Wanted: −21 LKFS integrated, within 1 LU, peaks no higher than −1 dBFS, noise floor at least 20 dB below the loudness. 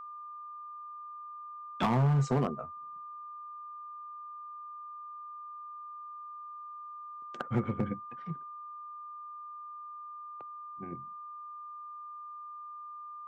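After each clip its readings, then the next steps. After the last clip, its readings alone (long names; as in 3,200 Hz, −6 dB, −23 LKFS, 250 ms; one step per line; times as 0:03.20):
share of clipped samples 0.7%; peaks flattened at −22.5 dBFS; interfering tone 1,200 Hz; level of the tone −42 dBFS; integrated loudness −38.0 LKFS; sample peak −22.5 dBFS; target loudness −21.0 LKFS
→ clipped peaks rebuilt −22.5 dBFS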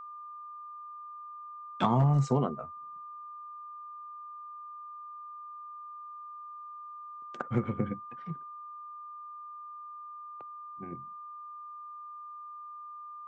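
share of clipped samples 0.0%; interfering tone 1,200 Hz; level of the tone −42 dBFS
→ notch filter 1,200 Hz, Q 30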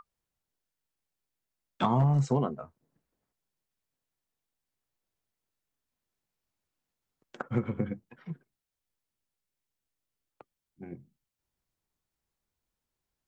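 interfering tone none found; integrated loudness −29.0 LKFS; sample peak −14.0 dBFS; target loudness −21.0 LKFS
→ level +8 dB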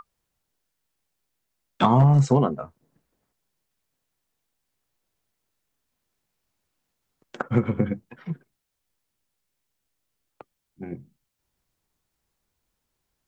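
integrated loudness −21.5 LKFS; sample peak −6.0 dBFS; background noise floor −80 dBFS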